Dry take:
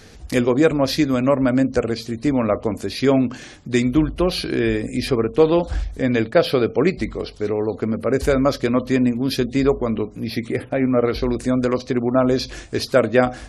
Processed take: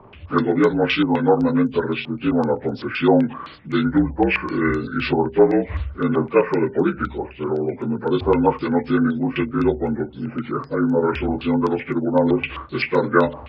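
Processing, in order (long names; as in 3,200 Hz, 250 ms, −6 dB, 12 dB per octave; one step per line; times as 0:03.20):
partials spread apart or drawn together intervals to 79%
low-pass on a step sequencer 7.8 Hz 830–6,500 Hz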